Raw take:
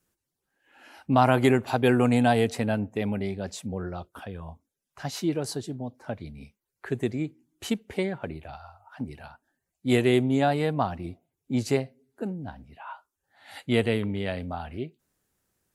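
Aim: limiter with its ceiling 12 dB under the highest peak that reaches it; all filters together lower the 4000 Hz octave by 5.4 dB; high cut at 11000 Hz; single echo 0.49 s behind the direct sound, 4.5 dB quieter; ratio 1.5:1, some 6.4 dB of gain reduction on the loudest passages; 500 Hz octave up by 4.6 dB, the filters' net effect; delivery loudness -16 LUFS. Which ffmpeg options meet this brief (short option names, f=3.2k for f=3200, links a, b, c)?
-af "lowpass=11k,equalizer=f=500:t=o:g=6,equalizer=f=4k:t=o:g=-7.5,acompressor=threshold=-31dB:ratio=1.5,alimiter=limit=-23dB:level=0:latency=1,aecho=1:1:490:0.596,volume=18dB"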